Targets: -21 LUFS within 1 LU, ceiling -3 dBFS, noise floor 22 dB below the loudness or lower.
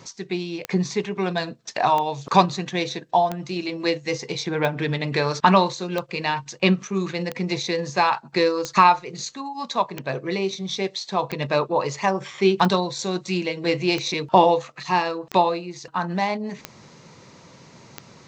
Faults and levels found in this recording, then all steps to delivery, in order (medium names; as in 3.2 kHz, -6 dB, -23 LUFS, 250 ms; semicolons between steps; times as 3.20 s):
clicks found 14; loudness -23.0 LUFS; peak level -2.0 dBFS; loudness target -21.0 LUFS
-> de-click; trim +2 dB; peak limiter -3 dBFS